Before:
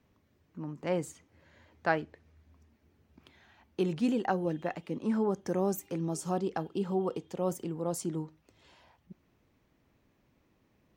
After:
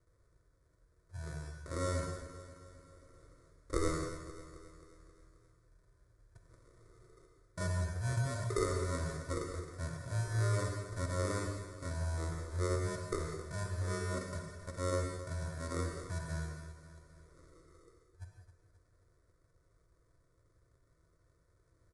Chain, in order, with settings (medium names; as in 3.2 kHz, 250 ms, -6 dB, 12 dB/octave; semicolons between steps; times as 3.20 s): in parallel at -2 dB: compression, threshold -44 dBFS, peak gain reduction 20.5 dB; on the sum: resampled via 16 kHz; sample-and-hold 27×; static phaser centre 1.6 kHz, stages 6; on a send: feedback delay 133 ms, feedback 56%, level -13 dB; on the sum: gated-style reverb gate 120 ms flat, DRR 2.5 dB; speed mistake 15 ips tape played at 7.5 ips; trim -4.5 dB